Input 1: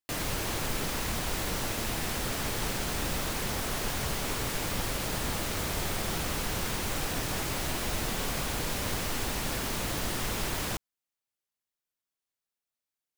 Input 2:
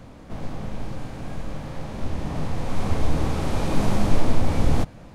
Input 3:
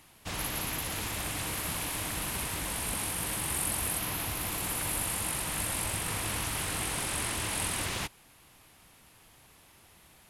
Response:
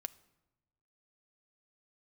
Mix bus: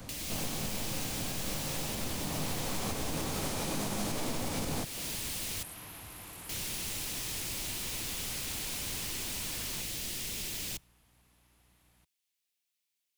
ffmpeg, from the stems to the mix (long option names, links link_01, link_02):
-filter_complex "[0:a]highshelf=frequency=1800:width_type=q:width=1.5:gain=9,acrossover=split=120|440|4100[link_01][link_02][link_03][link_04];[link_01]acompressor=threshold=-44dB:ratio=4[link_05];[link_02]acompressor=threshold=-47dB:ratio=4[link_06];[link_03]acompressor=threshold=-46dB:ratio=4[link_07];[link_04]acompressor=threshold=-35dB:ratio=4[link_08];[link_05][link_06][link_07][link_08]amix=inputs=4:normalize=0,volume=-5dB,asplit=3[link_09][link_10][link_11];[link_09]atrim=end=5.63,asetpts=PTS-STARTPTS,afade=type=out:start_time=5.626:duration=0.004:curve=hsin[link_12];[link_10]atrim=start=5.63:end=6.49,asetpts=PTS-STARTPTS,volume=0[link_13];[link_11]atrim=start=6.49,asetpts=PTS-STARTPTS,afade=type=in:duration=0.004:curve=hsin[link_14];[link_12][link_13][link_14]concat=n=3:v=0:a=1,asplit=2[link_15][link_16];[link_16]volume=-7.5dB[link_17];[1:a]crystalizer=i=3.5:c=0,volume=-3.5dB[link_18];[2:a]aeval=exprs='val(0)+0.00141*(sin(2*PI*60*n/s)+sin(2*PI*2*60*n/s)/2+sin(2*PI*3*60*n/s)/3+sin(2*PI*4*60*n/s)/4+sin(2*PI*5*60*n/s)/5)':channel_layout=same,asoftclip=type=tanh:threshold=-27.5dB,adelay=1750,volume=-11.5dB[link_19];[3:a]atrim=start_sample=2205[link_20];[link_17][link_20]afir=irnorm=-1:irlink=0[link_21];[link_15][link_18][link_19][link_21]amix=inputs=4:normalize=0,acrossover=split=120|3000[link_22][link_23][link_24];[link_22]acompressor=threshold=-41dB:ratio=2[link_25];[link_25][link_23][link_24]amix=inputs=3:normalize=0,alimiter=limit=-24dB:level=0:latency=1:release=240"